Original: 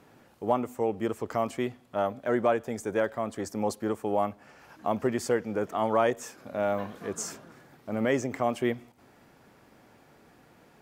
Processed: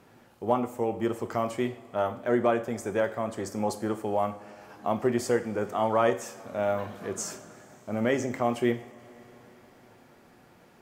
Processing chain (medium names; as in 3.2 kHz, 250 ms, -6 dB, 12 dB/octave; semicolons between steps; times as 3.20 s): two-slope reverb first 0.46 s, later 4.8 s, from -21 dB, DRR 7.5 dB